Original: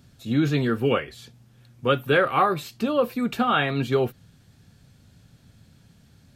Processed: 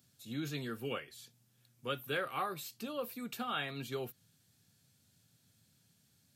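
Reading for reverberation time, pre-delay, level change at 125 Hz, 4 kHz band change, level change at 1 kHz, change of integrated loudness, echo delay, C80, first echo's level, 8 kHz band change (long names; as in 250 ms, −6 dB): no reverb audible, no reverb audible, −18.0 dB, −10.5 dB, −16.0 dB, −16.0 dB, no echo audible, no reverb audible, no echo audible, −4.5 dB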